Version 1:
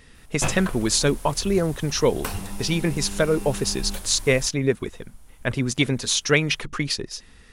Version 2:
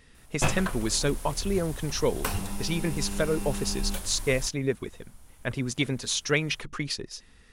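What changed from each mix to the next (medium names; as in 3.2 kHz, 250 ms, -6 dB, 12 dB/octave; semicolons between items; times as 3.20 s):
speech -6.0 dB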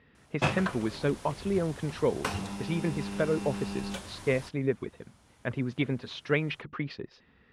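speech: add distance through air 380 m; master: add band-pass 100–5900 Hz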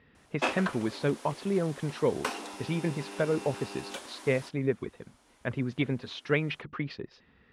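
background: add steep high-pass 230 Hz 96 dB/octave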